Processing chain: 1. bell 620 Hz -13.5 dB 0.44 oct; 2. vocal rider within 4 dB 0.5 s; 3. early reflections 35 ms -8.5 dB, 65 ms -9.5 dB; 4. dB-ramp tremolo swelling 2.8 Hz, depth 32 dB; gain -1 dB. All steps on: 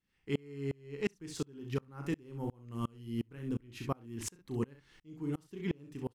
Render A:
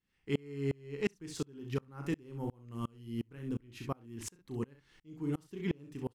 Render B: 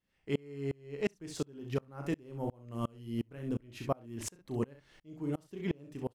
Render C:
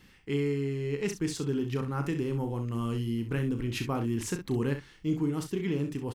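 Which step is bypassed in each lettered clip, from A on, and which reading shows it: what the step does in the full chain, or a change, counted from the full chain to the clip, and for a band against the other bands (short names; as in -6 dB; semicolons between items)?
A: 2, momentary loudness spread change +2 LU; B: 1, 500 Hz band +2.5 dB; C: 4, momentary loudness spread change -1 LU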